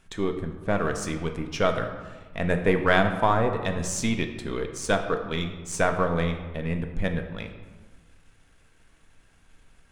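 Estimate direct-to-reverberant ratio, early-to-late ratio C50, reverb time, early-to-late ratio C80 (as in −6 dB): 5.0 dB, 8.5 dB, 1.4 s, 10.0 dB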